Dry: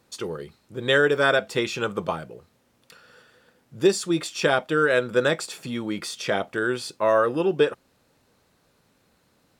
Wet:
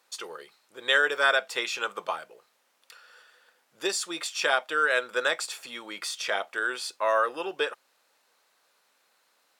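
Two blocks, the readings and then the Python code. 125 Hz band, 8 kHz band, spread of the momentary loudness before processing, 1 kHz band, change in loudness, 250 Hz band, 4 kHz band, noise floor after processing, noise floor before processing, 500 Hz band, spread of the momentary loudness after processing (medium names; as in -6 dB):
under -25 dB, 0.0 dB, 11 LU, -1.5 dB, -4.0 dB, -16.0 dB, 0.0 dB, -70 dBFS, -65 dBFS, -8.5 dB, 13 LU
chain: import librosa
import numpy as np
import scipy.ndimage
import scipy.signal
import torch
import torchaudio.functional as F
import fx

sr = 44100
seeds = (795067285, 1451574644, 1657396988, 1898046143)

y = scipy.signal.sosfilt(scipy.signal.butter(2, 790.0, 'highpass', fs=sr, output='sos'), x)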